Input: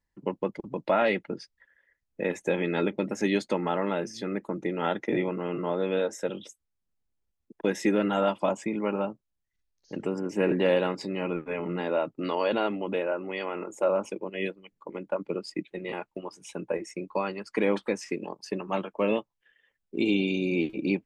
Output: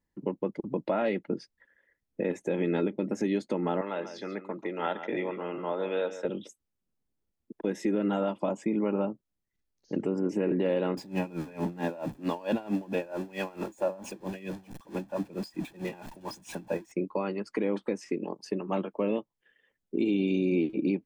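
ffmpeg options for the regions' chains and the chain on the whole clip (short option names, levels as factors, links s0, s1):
-filter_complex "[0:a]asettb=1/sr,asplit=3[s0][s1][s2];[s0]atrim=end=3.814[s3];[s1]atrim=start=3.81:end=6.25,asetpts=PTS-STARTPTS,afade=t=in:d=0.004:c=qsin,afade=t=out:st=2.436:d=0.004:c=qsin,acrossover=split=590 5600:gain=0.2 1 0.0891[s4][s5][s6];[s4][s5][s6]amix=inputs=3:normalize=0,aecho=1:1:140:0.251,atrim=end_sample=107604[s7];[s2]atrim=start=6.246[s8];[s3][s7]acrossfade=d=0.004:c1=hsin:c2=qsin[s9];[s9][s8]acrossfade=d=0.004:c1=qsin:c2=hsin,asettb=1/sr,asplit=3[s10][s11][s12];[s10]atrim=end=10.974[s13];[s11]atrim=start=10.97:end=16.92,asetpts=PTS-STARTPTS,afade=t=in:d=0.004:c=qsin,afade=t=out:st=5.946:d=0.004:c=qsin,aeval=exprs='val(0)+0.5*0.015*sgn(val(0))':c=same,aecho=1:1:1.2:0.52,atrim=end_sample=262395,aeval=exprs='val(0)*pow(10,-21*(0.5-0.5*cos(2*PI*4.5*n/s))/20)':c=same[s14];[s12]atrim=start=16.916[s15];[s13][s14]acrossfade=d=0.004:c1=hsin:c2=qsin[s16];[s16][s15]acrossfade=d=0.004:c1=qsin:c2=hsin,equalizer=f=270:w=0.5:g=9.5,alimiter=limit=0.168:level=0:latency=1:release=307,volume=0.708"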